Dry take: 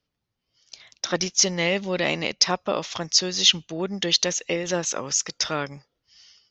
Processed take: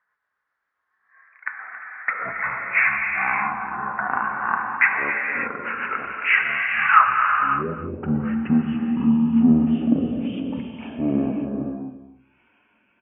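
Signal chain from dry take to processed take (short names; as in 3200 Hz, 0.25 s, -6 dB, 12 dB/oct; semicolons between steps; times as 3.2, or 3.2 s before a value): gliding pitch shift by -6.5 st ending unshifted; in parallel at -2 dB: compressor, threshold -32 dBFS, peak gain reduction 17.5 dB; on the sum: dynamic EQ 4000 Hz, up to -5 dB, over -34 dBFS, Q 2.3; band-pass sweep 3000 Hz -> 500 Hz, 3.35–4.05; on a send: echo 0.137 s -16 dB; on the sum: non-linear reverb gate 0.32 s flat, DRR 0.5 dB; speed mistake 15 ips tape played at 7.5 ips; gain +8 dB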